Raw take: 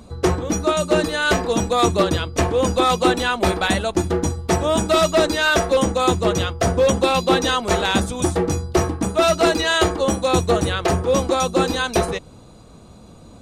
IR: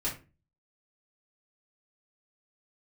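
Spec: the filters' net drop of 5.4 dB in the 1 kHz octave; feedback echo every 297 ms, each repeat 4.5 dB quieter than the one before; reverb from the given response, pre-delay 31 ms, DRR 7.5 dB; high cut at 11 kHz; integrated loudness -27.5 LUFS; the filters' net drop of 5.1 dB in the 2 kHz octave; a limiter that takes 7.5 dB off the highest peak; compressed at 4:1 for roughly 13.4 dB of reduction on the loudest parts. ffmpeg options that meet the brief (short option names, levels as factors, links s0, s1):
-filter_complex "[0:a]lowpass=11000,equalizer=f=1000:t=o:g=-6.5,equalizer=f=2000:t=o:g=-4.5,acompressor=threshold=0.0282:ratio=4,alimiter=level_in=1.12:limit=0.0631:level=0:latency=1,volume=0.891,aecho=1:1:297|594|891|1188|1485|1782|2079|2376|2673:0.596|0.357|0.214|0.129|0.0772|0.0463|0.0278|0.0167|0.01,asplit=2[s0][s1];[1:a]atrim=start_sample=2205,adelay=31[s2];[s1][s2]afir=irnorm=-1:irlink=0,volume=0.237[s3];[s0][s3]amix=inputs=2:normalize=0,volume=1.68"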